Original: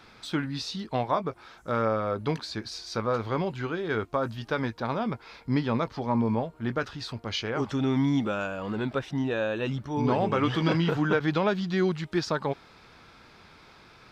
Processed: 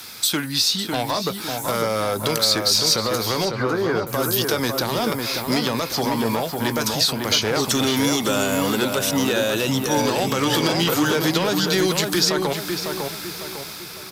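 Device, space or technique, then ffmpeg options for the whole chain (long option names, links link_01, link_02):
FM broadcast chain: -filter_complex "[0:a]highpass=59,dynaudnorm=framelen=530:gausssize=5:maxgain=6dB,acrossover=split=310|1100|3900[link_01][link_02][link_03][link_04];[link_01]acompressor=threshold=-35dB:ratio=4[link_05];[link_02]acompressor=threshold=-26dB:ratio=4[link_06];[link_03]acompressor=threshold=-39dB:ratio=4[link_07];[link_04]acompressor=threshold=-47dB:ratio=4[link_08];[link_05][link_06][link_07][link_08]amix=inputs=4:normalize=0,aemphasis=mode=production:type=75fm,alimiter=limit=-19dB:level=0:latency=1:release=71,asoftclip=type=hard:threshold=-23dB,lowpass=frequency=15000:width=0.5412,lowpass=frequency=15000:width=1.3066,aemphasis=mode=production:type=75fm,asettb=1/sr,asplit=3[link_09][link_10][link_11];[link_09]atrim=end=3.454[link_12];[link_10]atrim=start=3.45:end=4.07,asetpts=PTS-STARTPTS,afade=type=in:duration=0.004:curve=qsin,afade=type=out:start_time=0.616:duration=0.004:curve=qsin,lowpass=frequency=1800:width=0.5412,lowpass=frequency=1800:width=1.3066[link_13];[link_11]atrim=start=4.066[link_14];[link_12][link_13]acrossfade=duration=0.004:curve1=hsin:curve2=qsin[link_15];[link_15][link_14]acrossfade=duration=0.004:curve1=qsin:curve2=hsin,asplit=2[link_16][link_17];[link_17]adelay=552,lowpass=frequency=2200:poles=1,volume=-4dB,asplit=2[link_18][link_19];[link_19]adelay=552,lowpass=frequency=2200:poles=1,volume=0.44,asplit=2[link_20][link_21];[link_21]adelay=552,lowpass=frequency=2200:poles=1,volume=0.44,asplit=2[link_22][link_23];[link_23]adelay=552,lowpass=frequency=2200:poles=1,volume=0.44,asplit=2[link_24][link_25];[link_25]adelay=552,lowpass=frequency=2200:poles=1,volume=0.44,asplit=2[link_26][link_27];[link_27]adelay=552,lowpass=frequency=2200:poles=1,volume=0.44[link_28];[link_16][link_18][link_20][link_22][link_24][link_26][link_28]amix=inputs=7:normalize=0,volume=7.5dB"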